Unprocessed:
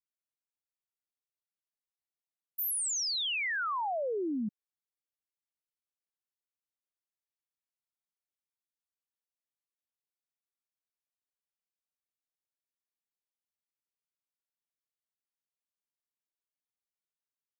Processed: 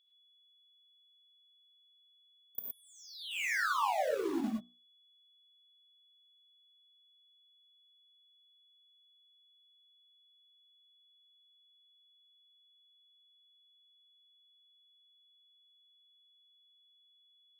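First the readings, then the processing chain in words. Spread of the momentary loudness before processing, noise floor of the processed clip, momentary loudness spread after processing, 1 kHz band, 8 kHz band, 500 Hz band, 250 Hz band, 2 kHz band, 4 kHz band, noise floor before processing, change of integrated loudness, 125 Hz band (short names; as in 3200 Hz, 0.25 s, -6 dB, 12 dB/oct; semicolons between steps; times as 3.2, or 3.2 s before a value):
7 LU, -68 dBFS, 14 LU, +1.0 dB, -15.0 dB, -0.5 dB, -1.0 dB, -0.5 dB, -8.5 dB, under -85 dBFS, -3.5 dB, n/a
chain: notches 60/120/180/240/300/360/420/480/540 Hz; treble ducked by the level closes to 1500 Hz, closed at -31 dBFS; high shelf 8600 Hz +12 dB; compressor 12:1, threshold -38 dBFS, peak gain reduction 8.5 dB; on a send: reverse echo 33 ms -16.5 dB; on the sum: power-law curve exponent 1.4; in parallel at -10 dB: bit-crush 7-bit; on the sum: whine 3400 Hz -72 dBFS; non-linear reverb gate 0.13 s rising, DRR -2 dB; gain +3 dB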